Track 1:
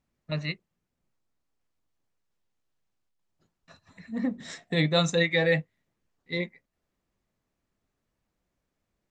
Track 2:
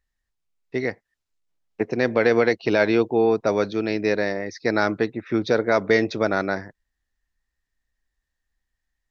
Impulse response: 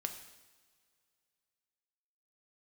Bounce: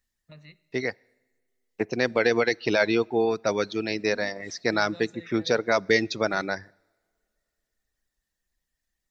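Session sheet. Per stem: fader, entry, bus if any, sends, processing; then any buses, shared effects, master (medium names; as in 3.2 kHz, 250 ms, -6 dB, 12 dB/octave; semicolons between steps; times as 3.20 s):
-15.5 dB, 0.00 s, send -7 dB, compression 4:1, threshold -33 dBFS, peak gain reduction 12.5 dB
-4.0 dB, 0.00 s, send -19.5 dB, reverb removal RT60 0.78 s; treble shelf 3.2 kHz +11 dB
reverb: on, pre-delay 3 ms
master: none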